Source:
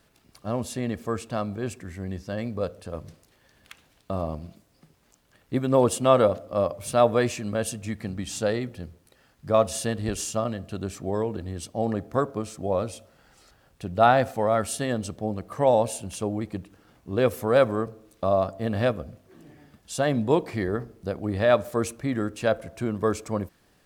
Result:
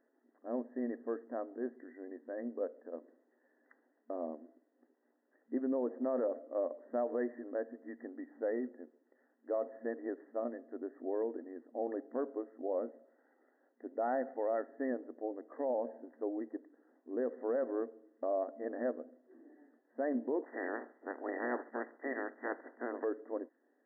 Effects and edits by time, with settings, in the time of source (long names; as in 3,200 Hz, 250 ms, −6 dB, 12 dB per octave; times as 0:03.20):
0:20.42–0:23.03: ceiling on every frequency bin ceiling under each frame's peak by 28 dB
whole clip: brick-wall band-pass 230–2,000 Hz; parametric band 1,200 Hz −13 dB 1.1 octaves; brickwall limiter −20.5 dBFS; level −5.5 dB